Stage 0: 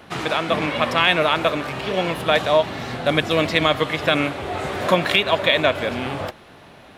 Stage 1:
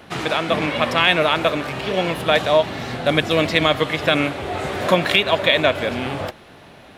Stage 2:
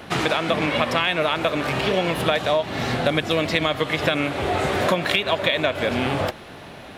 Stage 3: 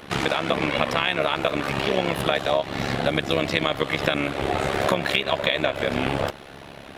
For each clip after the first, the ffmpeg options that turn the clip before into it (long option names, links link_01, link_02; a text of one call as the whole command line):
ffmpeg -i in.wav -af "equalizer=frequency=1100:width_type=o:width=0.77:gain=-2,volume=1.5dB" out.wav
ffmpeg -i in.wav -af "acompressor=threshold=-22dB:ratio=6,volume=4.5dB" out.wav
ffmpeg -i in.wav -af "tremolo=f=69:d=0.857,volume=2dB" out.wav